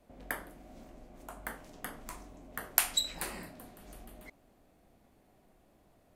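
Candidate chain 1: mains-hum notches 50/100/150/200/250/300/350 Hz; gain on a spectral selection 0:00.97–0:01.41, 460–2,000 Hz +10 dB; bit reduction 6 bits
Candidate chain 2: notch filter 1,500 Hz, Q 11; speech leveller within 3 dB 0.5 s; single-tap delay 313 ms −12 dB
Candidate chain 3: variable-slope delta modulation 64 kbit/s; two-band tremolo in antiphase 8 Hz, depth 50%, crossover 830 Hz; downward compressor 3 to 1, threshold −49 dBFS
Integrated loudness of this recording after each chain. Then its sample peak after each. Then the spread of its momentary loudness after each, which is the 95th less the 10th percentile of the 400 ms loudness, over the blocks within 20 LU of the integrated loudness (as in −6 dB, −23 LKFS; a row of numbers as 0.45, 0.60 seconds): −35.0, −38.5, −52.5 LKFS; −4.5, −7.5, −30.5 dBFS; 22, 17, 20 LU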